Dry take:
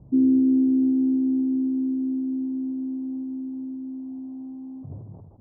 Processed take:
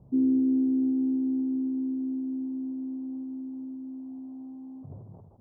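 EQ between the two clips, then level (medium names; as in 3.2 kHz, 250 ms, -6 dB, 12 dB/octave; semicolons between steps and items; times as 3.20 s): bass shelf 160 Hz -6.5 dB; peaking EQ 300 Hz -8 dB 0.2 oct; -1.5 dB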